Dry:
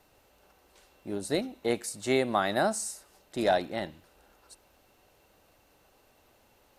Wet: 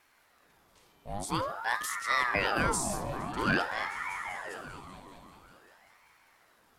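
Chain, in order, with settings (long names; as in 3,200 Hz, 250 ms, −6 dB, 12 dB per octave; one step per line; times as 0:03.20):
transient designer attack −1 dB, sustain +7 dB
echo whose low-pass opens from repeat to repeat 195 ms, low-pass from 200 Hz, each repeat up 1 octave, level −3 dB
ring modulator whose carrier an LFO sweeps 980 Hz, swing 65%, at 0.49 Hz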